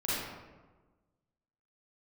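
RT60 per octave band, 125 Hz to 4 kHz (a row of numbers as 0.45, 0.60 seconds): 1.5, 1.5, 1.4, 1.2, 0.95, 0.70 seconds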